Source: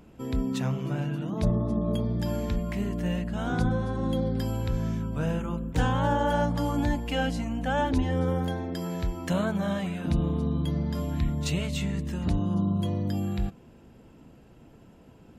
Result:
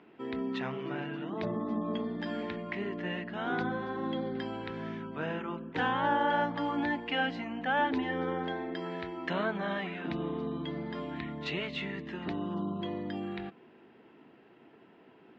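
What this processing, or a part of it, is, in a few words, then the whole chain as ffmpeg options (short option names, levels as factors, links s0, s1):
phone earpiece: -filter_complex "[0:a]asettb=1/sr,asplit=3[s0][s1][s2];[s0]atrim=end=1.534[s3];[s1]atrim=start=1.53:end=2.43,asetpts=PTS-STARTPTS,afade=t=in:d=0.004:c=qsin,afade=t=out:st=0.896:d=0.004:c=qsin,asplit=2[s4][s5];[s5]adelay=13,volume=0.562[s6];[s4][s6]amix=inputs=2:normalize=0,atrim=end_sample=39690[s7];[s2]atrim=start=2.426[s8];[s3][s7]acrossfade=d=0.004:c1=hsin:c2=qsin[s9];[s9][s8]acrossfade=d=0.004:c1=qsin:c2=hsin,highpass=330,equalizer=f=380:t=q:w=4:g=5,equalizer=f=540:t=q:w=4:g=-7,equalizer=f=1900:t=q:w=4:g=6,lowpass=f=3600:w=0.5412,lowpass=f=3600:w=1.3066"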